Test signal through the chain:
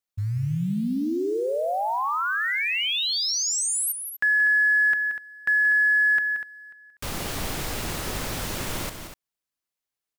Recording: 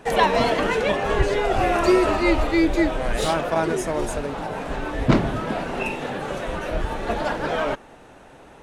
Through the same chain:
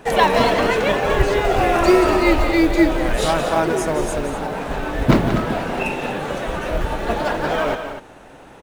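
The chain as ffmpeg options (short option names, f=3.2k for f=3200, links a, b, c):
-af "acrusher=bits=8:mode=log:mix=0:aa=0.000001,aecho=1:1:177.8|244.9:0.316|0.282,volume=3dB"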